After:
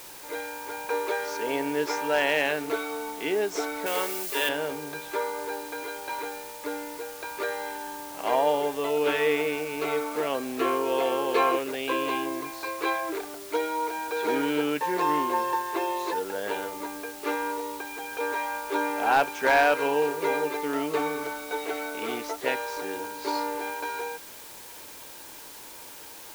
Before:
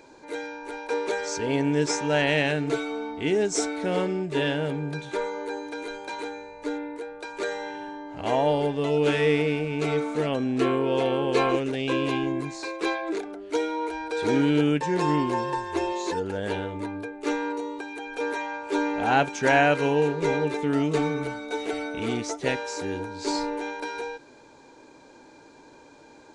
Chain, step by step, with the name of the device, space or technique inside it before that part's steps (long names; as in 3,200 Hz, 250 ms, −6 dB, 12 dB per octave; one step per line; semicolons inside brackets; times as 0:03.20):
drive-through speaker (band-pass filter 400–3,900 Hz; parametric band 1,100 Hz +4.5 dB 0.53 octaves; hard clipping −13.5 dBFS, distortion −23 dB; white noise bed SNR 16 dB)
0:03.86–0:04.49: spectral tilt +3 dB per octave